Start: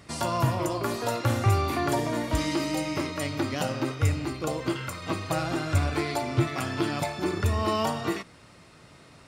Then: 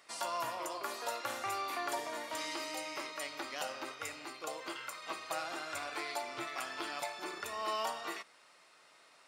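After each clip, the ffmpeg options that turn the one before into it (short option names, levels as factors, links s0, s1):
-af "highpass=680,volume=0.473"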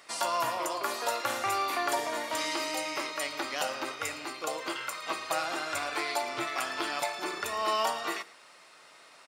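-af "aecho=1:1:112:0.1,volume=2.37"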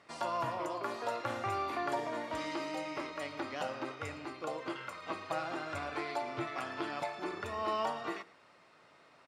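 -af "aemphasis=mode=reproduction:type=riaa,volume=0.531"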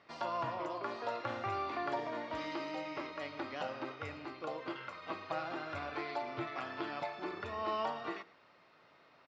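-af "lowpass=f=5300:w=0.5412,lowpass=f=5300:w=1.3066,volume=0.794"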